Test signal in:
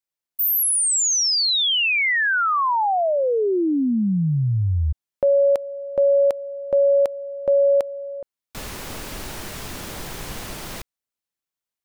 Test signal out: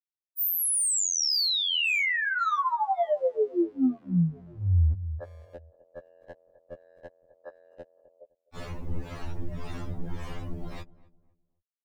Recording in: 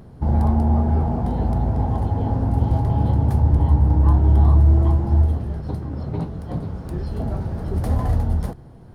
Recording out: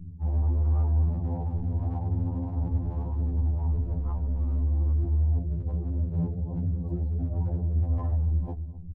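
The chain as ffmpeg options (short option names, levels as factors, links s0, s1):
-filter_complex "[0:a]acrossover=split=420[s0][s1];[s0]aeval=exprs='val(0)*(1-0.5/2+0.5/2*cos(2*PI*1.8*n/s))':c=same[s2];[s1]aeval=exprs='val(0)*(1-0.5/2-0.5/2*cos(2*PI*1.8*n/s))':c=same[s3];[s2][s3]amix=inputs=2:normalize=0,volume=8.91,asoftclip=hard,volume=0.112,afftdn=nr=27:nf=-37,lowshelf=f=160:g=11,bandreject=f=1500:w=19,asplit=2[s4][s5];[s5]adelay=257,lowpass=f=1000:p=1,volume=0.1,asplit=2[s6][s7];[s7]adelay=257,lowpass=f=1000:p=1,volume=0.33,asplit=2[s8][s9];[s9]adelay=257,lowpass=f=1000:p=1,volume=0.33[s10];[s4][s6][s8][s10]amix=inputs=4:normalize=0,areverse,acompressor=threshold=0.0891:ratio=8:attack=0.11:release=124:knee=1:detection=rms,areverse,afftfilt=real='re*2*eq(mod(b,4),0)':imag='im*2*eq(mod(b,4),0)':win_size=2048:overlap=0.75"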